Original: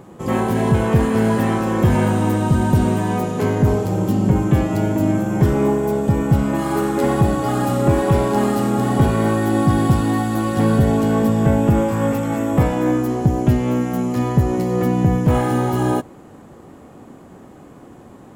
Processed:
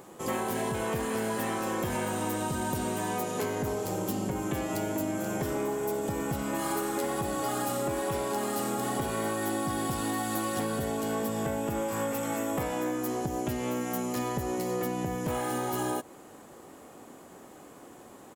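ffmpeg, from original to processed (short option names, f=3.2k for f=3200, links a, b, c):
-filter_complex "[0:a]asplit=2[a][b];[b]afade=t=in:st=4.72:d=0.01,afade=t=out:st=5.35:d=0.01,aecho=0:1:480|960|1440|1920|2400|2880|3360|3840|4320:0.334965|0.217728|0.141523|0.0919899|0.0597934|0.0388657|0.0252627|0.0164208|0.0106735[c];[a][c]amix=inputs=2:normalize=0,bass=f=250:g=-11,treble=f=4k:g=-1,acompressor=threshold=-23dB:ratio=6,highshelf=f=4.3k:g=12,volume=-5dB"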